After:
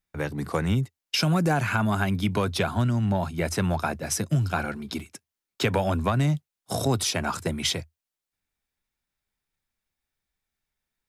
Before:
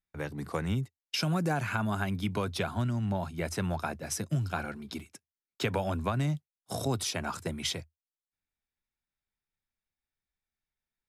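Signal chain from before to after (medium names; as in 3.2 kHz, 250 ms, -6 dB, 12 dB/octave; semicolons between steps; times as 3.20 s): saturation -17 dBFS, distortion -27 dB; trim +7 dB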